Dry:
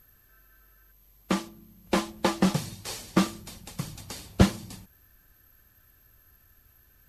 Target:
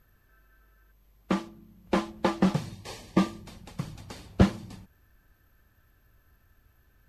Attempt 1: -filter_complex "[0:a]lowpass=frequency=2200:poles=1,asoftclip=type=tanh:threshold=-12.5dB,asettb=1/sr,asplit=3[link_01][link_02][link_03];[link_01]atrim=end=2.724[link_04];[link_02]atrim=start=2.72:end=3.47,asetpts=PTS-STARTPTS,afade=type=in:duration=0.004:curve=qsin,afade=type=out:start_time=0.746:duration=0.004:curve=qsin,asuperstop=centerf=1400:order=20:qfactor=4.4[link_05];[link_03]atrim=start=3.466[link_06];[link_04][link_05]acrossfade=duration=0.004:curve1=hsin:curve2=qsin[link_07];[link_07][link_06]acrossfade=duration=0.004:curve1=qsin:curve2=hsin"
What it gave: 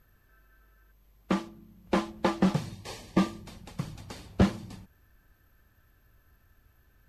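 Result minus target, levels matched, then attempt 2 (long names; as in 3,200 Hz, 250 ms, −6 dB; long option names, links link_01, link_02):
soft clipping: distortion +11 dB
-filter_complex "[0:a]lowpass=frequency=2200:poles=1,asoftclip=type=tanh:threshold=-4dB,asettb=1/sr,asplit=3[link_01][link_02][link_03];[link_01]atrim=end=2.724[link_04];[link_02]atrim=start=2.72:end=3.47,asetpts=PTS-STARTPTS,afade=type=in:duration=0.004:curve=qsin,afade=type=out:start_time=0.746:duration=0.004:curve=qsin,asuperstop=centerf=1400:order=20:qfactor=4.4[link_05];[link_03]atrim=start=3.466[link_06];[link_04][link_05]acrossfade=duration=0.004:curve1=hsin:curve2=qsin[link_07];[link_07][link_06]acrossfade=duration=0.004:curve1=qsin:curve2=hsin"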